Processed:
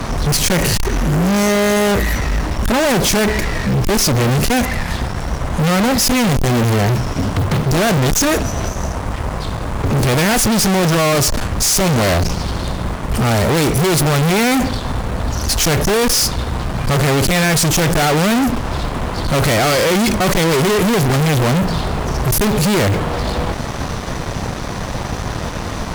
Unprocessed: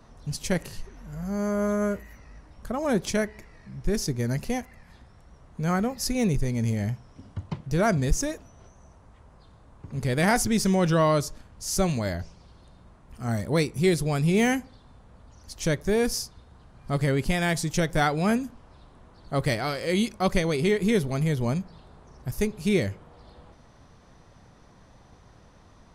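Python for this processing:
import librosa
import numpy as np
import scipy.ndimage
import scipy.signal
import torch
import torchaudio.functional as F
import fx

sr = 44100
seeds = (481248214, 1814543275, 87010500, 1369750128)

y = fx.mod_noise(x, sr, seeds[0], snr_db=33)
y = fx.fuzz(y, sr, gain_db=48.0, gate_db=-58.0)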